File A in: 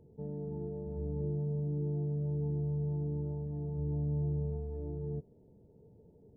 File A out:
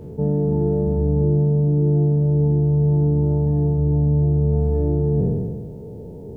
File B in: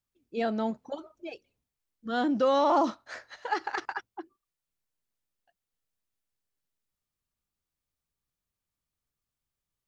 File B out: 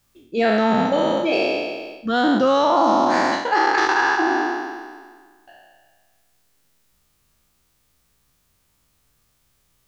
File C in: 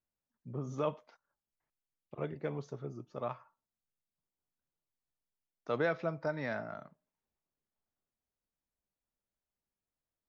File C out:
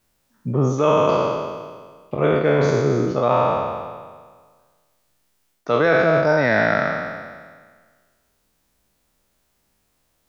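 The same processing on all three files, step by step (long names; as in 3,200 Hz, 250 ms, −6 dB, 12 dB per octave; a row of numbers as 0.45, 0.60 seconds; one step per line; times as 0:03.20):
peak hold with a decay on every bin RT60 1.62 s
reversed playback
downward compressor 5 to 1, threshold −36 dBFS
reversed playback
loudness normalisation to −19 LKFS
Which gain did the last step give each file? +21.0, +20.0, +22.0 decibels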